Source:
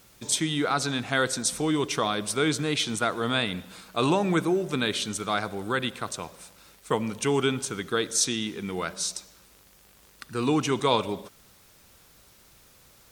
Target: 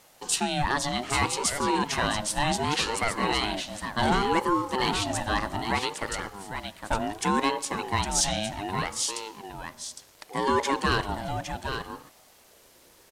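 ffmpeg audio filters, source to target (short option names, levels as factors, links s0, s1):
-filter_complex "[0:a]volume=6.68,asoftclip=hard,volume=0.15,aresample=32000,aresample=44100,asplit=2[s0][s1];[s1]aecho=0:1:809:0.422[s2];[s0][s2]amix=inputs=2:normalize=0,aeval=exprs='val(0)*sin(2*PI*560*n/s+560*0.25/0.66*sin(2*PI*0.66*n/s))':c=same,volume=1.33"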